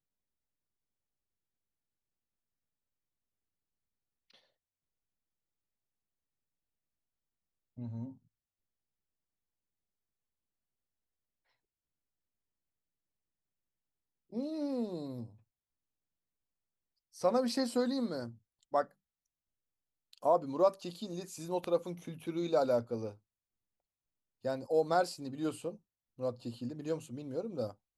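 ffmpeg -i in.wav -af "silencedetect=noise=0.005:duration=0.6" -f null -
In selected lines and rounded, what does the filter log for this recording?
silence_start: 0.00
silence_end: 7.78 | silence_duration: 7.78
silence_start: 8.13
silence_end: 14.33 | silence_duration: 6.20
silence_start: 15.27
silence_end: 17.16 | silence_duration: 1.89
silence_start: 18.85
silence_end: 20.13 | silence_duration: 1.29
silence_start: 23.13
silence_end: 24.45 | silence_duration: 1.32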